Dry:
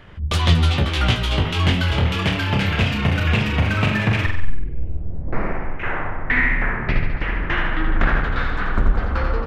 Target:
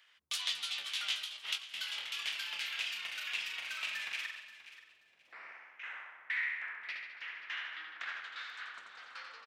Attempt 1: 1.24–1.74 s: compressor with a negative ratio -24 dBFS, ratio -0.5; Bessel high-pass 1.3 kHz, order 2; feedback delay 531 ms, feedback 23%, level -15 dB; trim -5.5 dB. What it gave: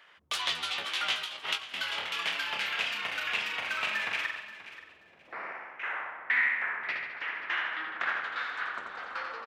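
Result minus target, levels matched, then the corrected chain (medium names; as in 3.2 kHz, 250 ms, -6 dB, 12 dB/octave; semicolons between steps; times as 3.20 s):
1 kHz band +7.5 dB
1.24–1.74 s: compressor with a negative ratio -24 dBFS, ratio -0.5; Bessel high-pass 3.9 kHz, order 2; feedback delay 531 ms, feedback 23%, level -15 dB; trim -5.5 dB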